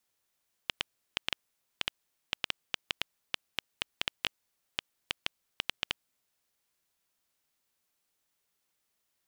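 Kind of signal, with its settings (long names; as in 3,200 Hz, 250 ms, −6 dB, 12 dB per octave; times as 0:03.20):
Geiger counter clicks 5 per second −10 dBFS 5.37 s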